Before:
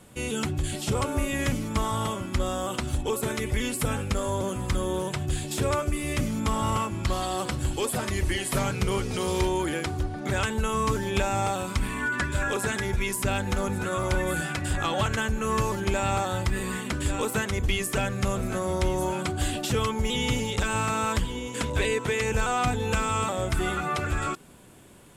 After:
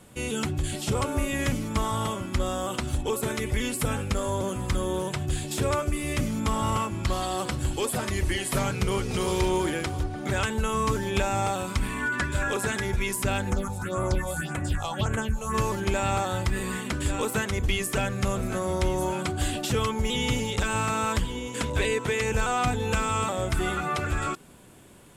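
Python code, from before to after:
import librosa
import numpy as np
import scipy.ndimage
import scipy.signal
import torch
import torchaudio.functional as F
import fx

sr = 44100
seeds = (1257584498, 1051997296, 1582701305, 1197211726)

y = fx.echo_throw(x, sr, start_s=8.75, length_s=0.62, ms=330, feedback_pct=45, wet_db=-8.0)
y = fx.phaser_stages(y, sr, stages=4, low_hz=280.0, high_hz=4900.0, hz=1.8, feedback_pct=25, at=(13.49, 15.53), fade=0.02)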